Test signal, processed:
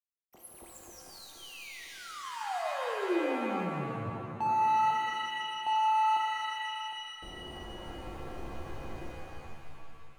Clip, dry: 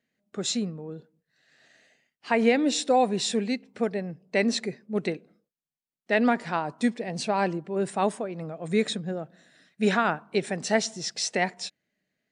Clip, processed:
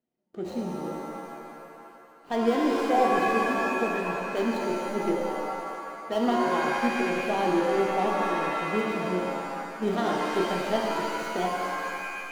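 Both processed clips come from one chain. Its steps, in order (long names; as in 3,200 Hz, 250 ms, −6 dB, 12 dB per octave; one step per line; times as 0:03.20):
running median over 25 samples
hollow resonant body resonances 350/720/1,900/3,100 Hz, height 8 dB, ringing for 25 ms
reverb with rising layers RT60 2.3 s, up +7 semitones, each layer −2 dB, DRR −0.5 dB
level −7 dB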